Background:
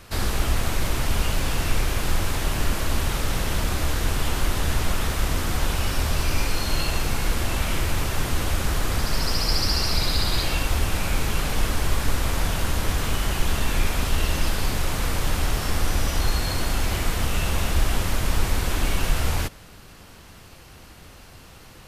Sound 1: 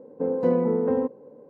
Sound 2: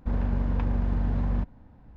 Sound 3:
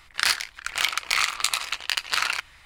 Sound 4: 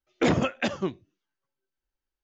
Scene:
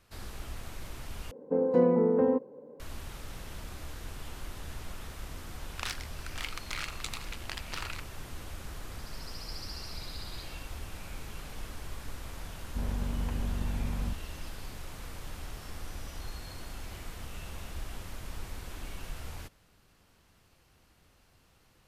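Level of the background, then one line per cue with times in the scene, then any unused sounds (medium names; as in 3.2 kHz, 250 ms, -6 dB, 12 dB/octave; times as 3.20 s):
background -18.5 dB
1.31 s: replace with 1 -1.5 dB + peaking EQ 85 Hz -5 dB
5.60 s: add 3 -15.5 dB + loudspeaker Doppler distortion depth 0.64 ms
12.69 s: add 2 -7 dB
not used: 4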